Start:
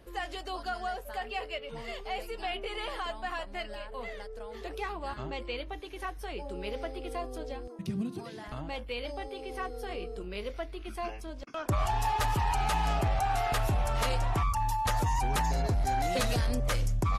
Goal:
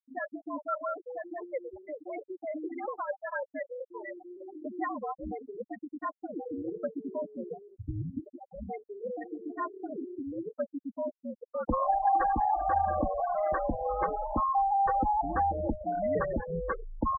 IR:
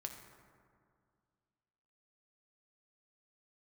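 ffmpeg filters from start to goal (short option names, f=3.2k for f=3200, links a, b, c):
-af "highpass=f=150:t=q:w=0.5412,highpass=f=150:t=q:w=1.307,lowpass=f=2.1k:t=q:w=0.5176,lowpass=f=2.1k:t=q:w=0.7071,lowpass=f=2.1k:t=q:w=1.932,afreqshift=-83,afftfilt=real='re*gte(hypot(re,im),0.0501)':imag='im*gte(hypot(re,im),0.0501)':win_size=1024:overlap=0.75,aecho=1:1:3.7:0.57,volume=2.5dB"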